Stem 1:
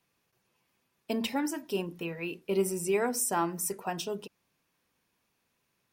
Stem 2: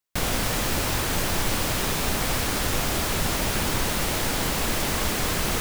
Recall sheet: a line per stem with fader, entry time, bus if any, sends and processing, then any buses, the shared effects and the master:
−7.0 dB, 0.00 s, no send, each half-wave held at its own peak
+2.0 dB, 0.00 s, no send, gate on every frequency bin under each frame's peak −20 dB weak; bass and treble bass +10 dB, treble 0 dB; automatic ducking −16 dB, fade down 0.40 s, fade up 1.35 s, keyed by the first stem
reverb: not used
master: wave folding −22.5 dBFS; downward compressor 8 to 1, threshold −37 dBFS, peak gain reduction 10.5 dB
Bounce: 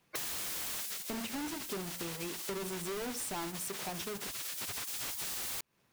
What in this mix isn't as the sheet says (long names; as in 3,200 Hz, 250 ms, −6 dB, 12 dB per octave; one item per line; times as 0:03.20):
stem 1 −7.0 dB → 0.0 dB
stem 2 +2.0 dB → +12.0 dB